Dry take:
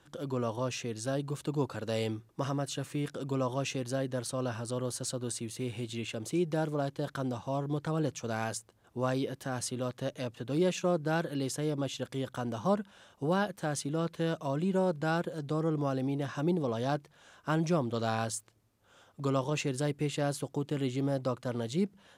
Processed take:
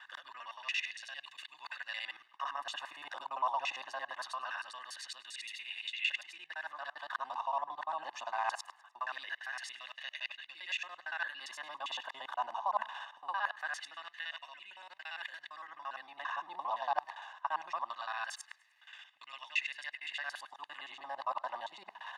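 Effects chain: local time reversal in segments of 57 ms; comb 1.1 ms, depth 94%; reverse; compressor 12:1, threshold -40 dBFS, peak gain reduction 18.5 dB; reverse; LFO high-pass sine 0.22 Hz 890–2200 Hz; three-band isolator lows -14 dB, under 400 Hz, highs -20 dB, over 4100 Hz; frequency-shifting echo 0.102 s, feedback 49%, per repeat +37 Hz, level -23 dB; gain +9.5 dB

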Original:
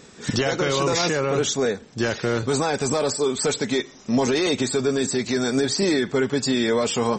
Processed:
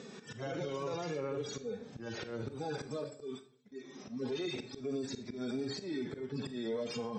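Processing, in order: median-filter separation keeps harmonic; 3.04–3.78 gate -28 dBFS, range -39 dB; HPF 140 Hz 12 dB/oct; bell 1700 Hz -3.5 dB 2 oct; compressor 5:1, threshold -29 dBFS, peak gain reduction 10.5 dB; auto swell 0.292 s; limiter -31.5 dBFS, peak gain reduction 11 dB; air absorption 99 m; reverb RT60 0.45 s, pre-delay 34 ms, DRR 10 dB; gain +2 dB

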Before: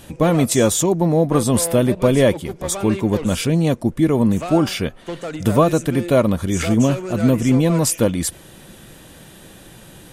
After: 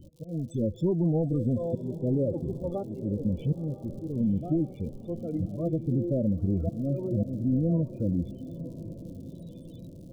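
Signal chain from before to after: overloaded stage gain 11.5 dB; harmonic-percussive split percussive -14 dB; auto swell 0.586 s; rotary speaker horn 0.7 Hz; treble ducked by the level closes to 1600 Hz, closed at -23 dBFS; loudest bins only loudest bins 16; crackle 100/s -48 dBFS; compressor, threshold -24 dBFS, peak gain reduction 8.5 dB; Butterworth band-stop 1700 Hz, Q 0.62; bell 620 Hz -2.5 dB 2.7 oct; diffused feedback echo 0.975 s, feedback 51%, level -14 dB; gain +3 dB

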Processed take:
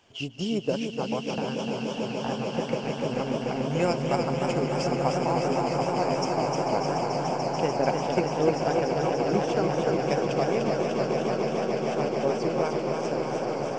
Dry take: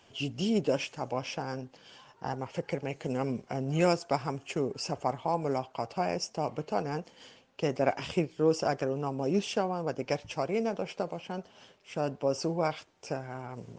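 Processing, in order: transient shaper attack +4 dB, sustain -8 dB; swelling echo 0.146 s, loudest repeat 8, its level -10 dB; warbling echo 0.303 s, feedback 69%, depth 83 cents, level -5 dB; gain -1.5 dB

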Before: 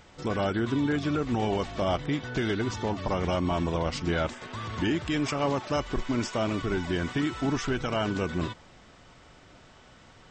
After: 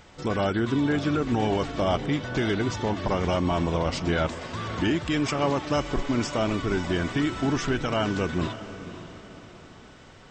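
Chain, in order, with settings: diffused feedback echo 0.549 s, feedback 43%, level -13 dB; gain +2.5 dB

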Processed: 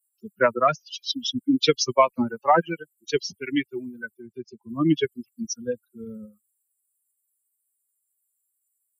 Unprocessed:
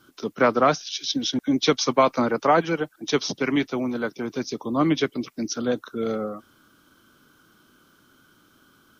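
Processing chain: per-bin expansion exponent 3; 4.17–4.69 treble ducked by the level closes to 2000 Hz, closed at -36.5 dBFS; gain +5 dB

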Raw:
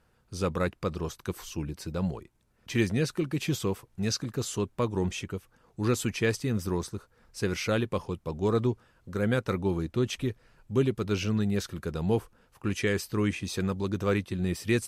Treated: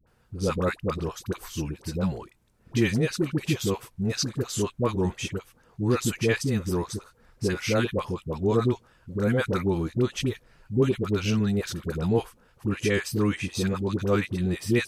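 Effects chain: dispersion highs, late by 71 ms, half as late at 670 Hz; gain +3 dB

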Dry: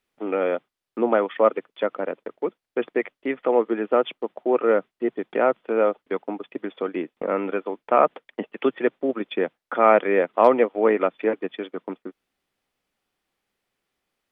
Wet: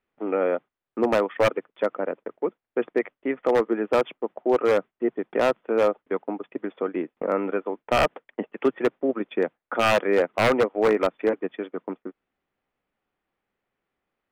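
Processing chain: LPF 2100 Hz 12 dB/oct; wavefolder -12 dBFS

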